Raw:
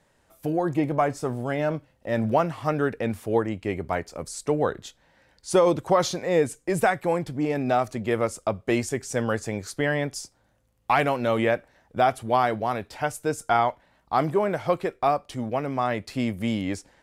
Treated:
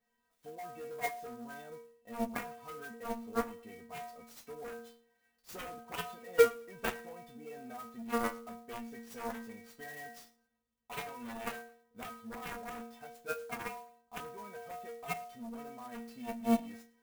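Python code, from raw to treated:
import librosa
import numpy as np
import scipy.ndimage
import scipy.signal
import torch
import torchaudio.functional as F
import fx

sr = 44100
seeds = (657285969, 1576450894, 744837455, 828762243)

p1 = fx.env_lowpass_down(x, sr, base_hz=1900.0, full_db=-18.5)
p2 = fx.level_steps(p1, sr, step_db=18)
p3 = p1 + F.gain(torch.from_numpy(p2), 0.5).numpy()
p4 = fx.stiff_resonator(p3, sr, f0_hz=230.0, decay_s=0.59, stiffness=0.008)
p5 = fx.cheby_harmonics(p4, sr, harmonics=(3, 5, 7), levels_db=(-13, -34, -19), full_scale_db=-17.5)
p6 = p5 + fx.echo_feedback(p5, sr, ms=109, feedback_pct=29, wet_db=-23, dry=0)
p7 = fx.clock_jitter(p6, sr, seeds[0], jitter_ms=0.033)
y = F.gain(torch.from_numpy(p7), 7.0).numpy()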